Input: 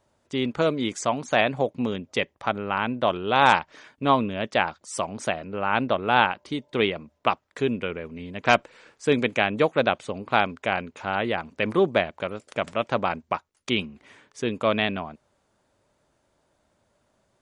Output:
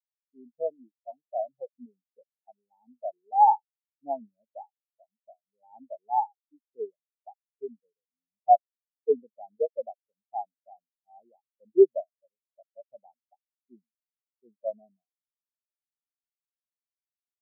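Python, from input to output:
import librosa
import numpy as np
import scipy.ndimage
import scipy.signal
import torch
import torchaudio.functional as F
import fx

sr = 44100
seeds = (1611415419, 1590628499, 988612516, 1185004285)

y = fx.dynamic_eq(x, sr, hz=700.0, q=0.94, threshold_db=-29.0, ratio=4.0, max_db=4)
y = scipy.signal.sosfilt(scipy.signal.ellip(3, 1.0, 40, [870.0, 4400.0], 'bandstop', fs=sr, output='sos'), y)
y = fx.spectral_expand(y, sr, expansion=4.0)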